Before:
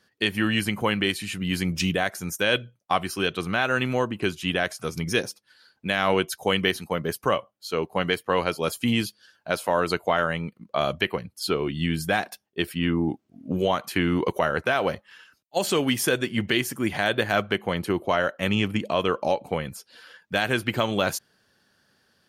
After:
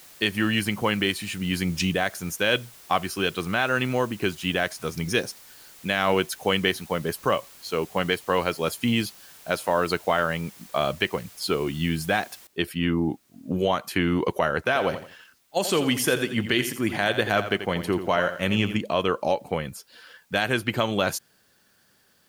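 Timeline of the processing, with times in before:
12.47 noise floor step -49 dB -66 dB
14.59–18.76 lo-fi delay 85 ms, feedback 35%, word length 8-bit, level -10.5 dB

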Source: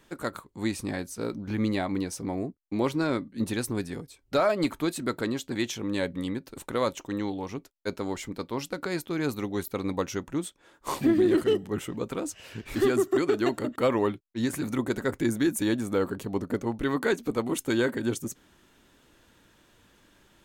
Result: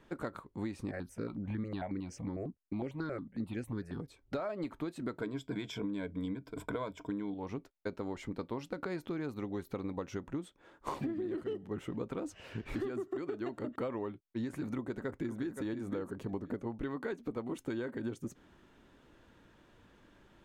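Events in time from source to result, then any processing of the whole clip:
0.91–4 step phaser 11 Hz 940–3800 Hz
5.21–7.34 ripple EQ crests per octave 1.7, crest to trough 13 dB
8.83–10.28 upward compressor, threshold -31 dBFS
14.69–15.58 echo throw 0.52 s, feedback 10%, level -8 dB
whole clip: LPF 1600 Hz 6 dB/oct; compressor 12:1, threshold -34 dBFS

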